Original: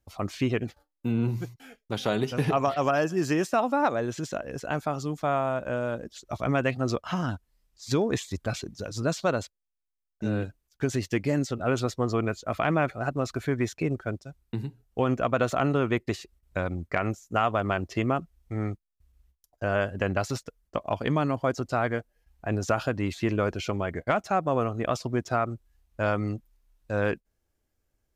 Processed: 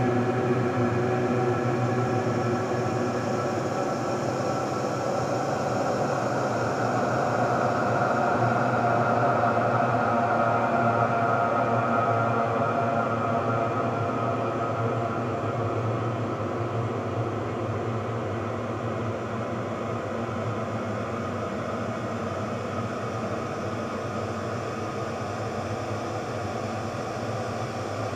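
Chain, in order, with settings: diffused feedback echo 0.868 s, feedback 57%, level -4 dB; Paulstretch 47×, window 0.25 s, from 25.16

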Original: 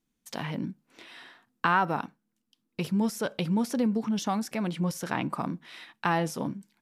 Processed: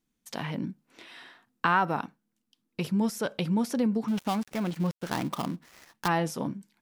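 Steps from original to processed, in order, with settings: 4.08–6.08 switching dead time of 0.15 ms

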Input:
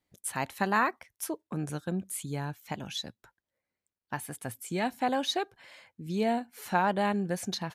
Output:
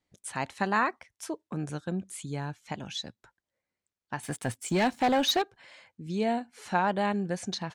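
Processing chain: LPF 8800 Hz 24 dB/oct; 4.23–5.42 sample leveller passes 2

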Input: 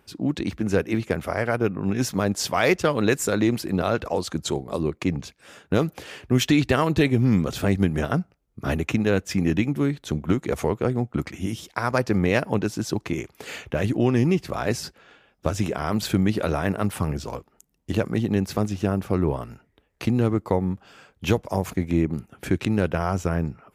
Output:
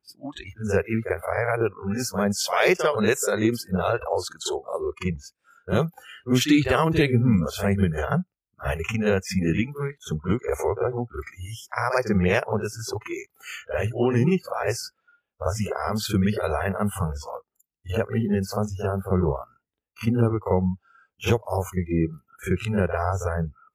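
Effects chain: reverse echo 44 ms -6.5 dB; spectral noise reduction 26 dB

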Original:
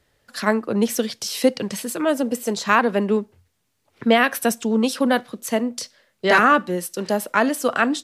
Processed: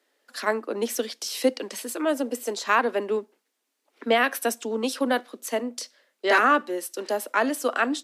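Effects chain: steep high-pass 250 Hz 48 dB/oct; gain -4 dB

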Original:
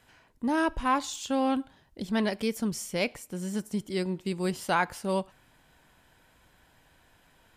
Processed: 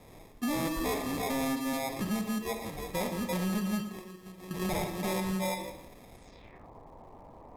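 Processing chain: 2.21–2.95 metallic resonator 140 Hz, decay 0.5 s, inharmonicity 0.03; harmonic-percussive split percussive -9 dB; in parallel at -1 dB: level quantiser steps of 24 dB; on the sum: delay with a stepping band-pass 0.169 s, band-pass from 250 Hz, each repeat 1.4 oct, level -3 dB; compressor 6:1, threshold -35 dBFS, peak gain reduction 17.5 dB; 3.82–4.51 pre-emphasis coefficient 0.9; sample-and-hold 30×; on a send at -8 dB: reverb RT60 0.80 s, pre-delay 32 ms; on the sum: soft clip -35 dBFS, distortion -13 dB; low-pass sweep 13000 Hz -> 970 Hz, 6.13–6.69; lo-fi delay 0.116 s, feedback 35%, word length 10-bit, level -15 dB; gain +8.5 dB

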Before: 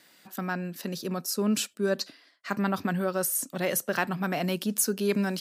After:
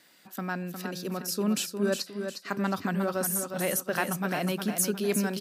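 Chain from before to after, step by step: feedback echo 0.358 s, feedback 36%, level -7 dB; gain -1.5 dB

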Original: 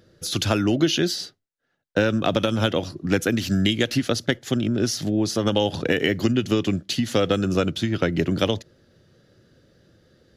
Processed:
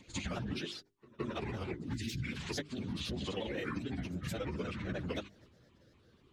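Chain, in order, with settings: trilling pitch shifter -7 st, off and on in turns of 0.207 s; transient shaper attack +3 dB, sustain +7 dB; spectral delete 3.13–3.63, 440–1700 Hz; grains, pitch spread up and down by 3 st; plain phase-vocoder stretch 0.61×; compressor 6:1, threshold -32 dBFS, peak gain reduction 14 dB; notches 50/100/150/200/250/300/350/400 Hz; on a send: reverse echo 0.168 s -22 dB; on the sum: gain -3 dB

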